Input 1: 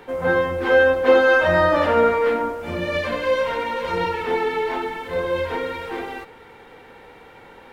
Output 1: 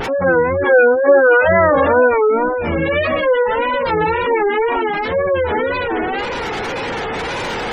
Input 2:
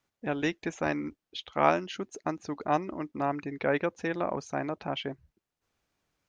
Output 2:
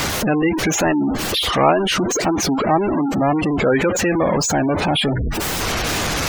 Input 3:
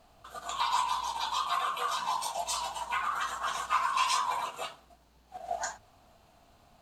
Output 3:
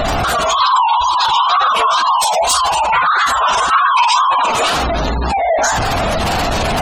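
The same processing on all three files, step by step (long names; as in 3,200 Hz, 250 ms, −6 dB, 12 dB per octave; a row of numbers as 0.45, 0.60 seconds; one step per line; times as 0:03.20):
converter with a step at zero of −19.5 dBFS
tape wow and flutter 130 cents
gate on every frequency bin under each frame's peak −20 dB strong
normalise the peak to −2 dBFS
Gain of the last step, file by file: +2.5, +5.5, +10.5 decibels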